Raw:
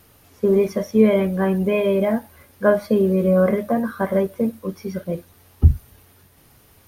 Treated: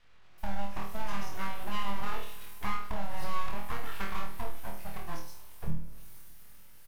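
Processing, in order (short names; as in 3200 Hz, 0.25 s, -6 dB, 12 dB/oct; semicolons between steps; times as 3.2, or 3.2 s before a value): three bands offset in time mids, lows, highs 40/380 ms, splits 180/3300 Hz; compressor, threshold -23 dBFS, peak gain reduction 15 dB; spring tank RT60 3.4 s, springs 48 ms, chirp 50 ms, DRR 14 dB; full-wave rectifier; bell 370 Hz -10.5 dB 2.7 oct; on a send: flutter echo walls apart 4.3 m, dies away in 0.44 s; on the sum: gain -4 dB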